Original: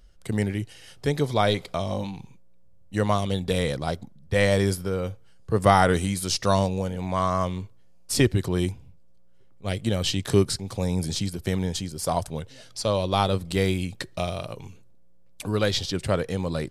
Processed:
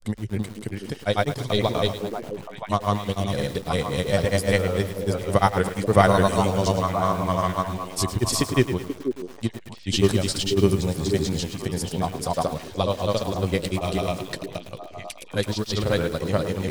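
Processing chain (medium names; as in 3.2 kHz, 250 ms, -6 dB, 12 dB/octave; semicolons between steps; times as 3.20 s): granulator, spray 419 ms, pitch spread up and down by 0 st; repeats whose band climbs or falls 485 ms, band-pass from 340 Hz, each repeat 1.4 oct, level -4.5 dB; bit-crushed delay 107 ms, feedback 55%, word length 6-bit, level -11 dB; trim +2.5 dB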